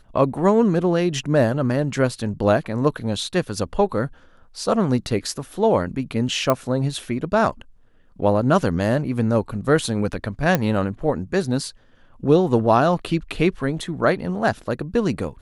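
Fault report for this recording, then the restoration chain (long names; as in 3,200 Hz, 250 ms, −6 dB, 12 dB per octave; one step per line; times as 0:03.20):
0:06.50: click −6 dBFS
0:10.55: click −5 dBFS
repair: click removal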